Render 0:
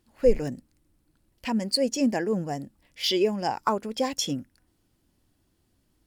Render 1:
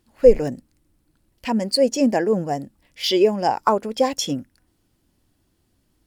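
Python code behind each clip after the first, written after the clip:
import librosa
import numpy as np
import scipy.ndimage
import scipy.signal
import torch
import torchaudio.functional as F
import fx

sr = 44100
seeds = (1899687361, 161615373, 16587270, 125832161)

y = fx.dynamic_eq(x, sr, hz=600.0, q=0.78, threshold_db=-36.0, ratio=4.0, max_db=6)
y = F.gain(torch.from_numpy(y), 3.0).numpy()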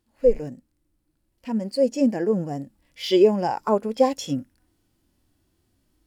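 y = fx.hpss(x, sr, part='percussive', gain_db=-12)
y = fx.rider(y, sr, range_db=10, speed_s=2.0)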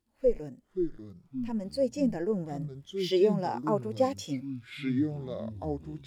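y = fx.echo_pitch(x, sr, ms=428, semitones=-6, count=3, db_per_echo=-6.0)
y = F.gain(torch.from_numpy(y), -7.5).numpy()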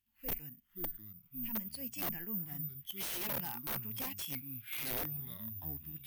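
y = fx.curve_eq(x, sr, hz=(120.0, 220.0, 530.0, 830.0, 2900.0, 4100.0, 9800.0), db=(0, -3, -23, -7, 11, 1, 6))
y = (np.mod(10.0 ** (28.5 / 20.0) * y + 1.0, 2.0) - 1.0) / 10.0 ** (28.5 / 20.0)
y = (np.kron(scipy.signal.resample_poly(y, 1, 3), np.eye(3)[0]) * 3)[:len(y)]
y = F.gain(torch.from_numpy(y), -7.5).numpy()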